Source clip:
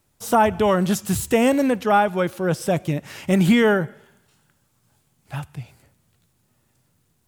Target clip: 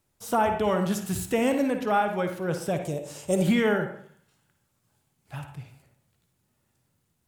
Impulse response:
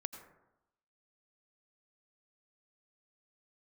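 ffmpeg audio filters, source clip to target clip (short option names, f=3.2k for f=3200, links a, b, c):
-filter_complex "[0:a]asettb=1/sr,asplit=3[a][b][c];[a]atrim=end=2.824[d];[b]atrim=start=2.82:end=3.42,asetpts=PTS-STARTPTS,afade=t=in:d=0.004:c=qsin,afade=t=out:st=0.596:d=0.004:c=qsin,equalizer=f=250:t=o:w=1:g=-8,equalizer=f=500:t=o:w=1:g=10,equalizer=f=2k:t=o:w=1:g=-12,equalizer=f=8k:t=o:w=1:g=12[e];[c]atrim=start=3.416[f];[d][e]acrossfade=d=0.004:c1=hsin:c2=qsin[g];[g][f]acrossfade=d=0.004:c1=qsin:c2=hsin[h];[1:a]atrim=start_sample=2205,asetrate=74970,aresample=44100[i];[h][i]afir=irnorm=-1:irlink=0"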